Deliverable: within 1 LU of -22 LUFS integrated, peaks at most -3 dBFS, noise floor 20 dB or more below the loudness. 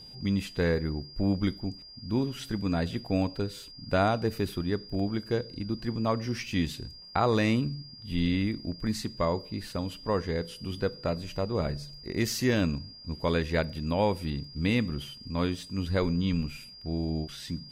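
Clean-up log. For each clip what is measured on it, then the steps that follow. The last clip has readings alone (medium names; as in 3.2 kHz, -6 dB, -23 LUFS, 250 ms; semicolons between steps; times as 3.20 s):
steady tone 4.8 kHz; tone level -46 dBFS; loudness -30.5 LUFS; peak level -13.5 dBFS; loudness target -22.0 LUFS
-> band-stop 4.8 kHz, Q 30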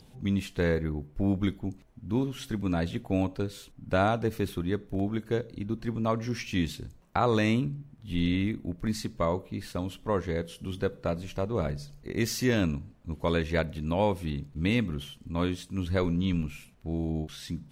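steady tone not found; loudness -30.5 LUFS; peak level -14.0 dBFS; loudness target -22.0 LUFS
-> trim +8.5 dB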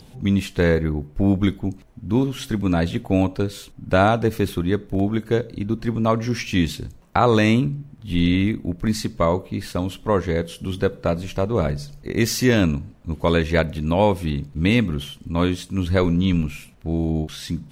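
loudness -22.0 LUFS; peak level -5.5 dBFS; noise floor -46 dBFS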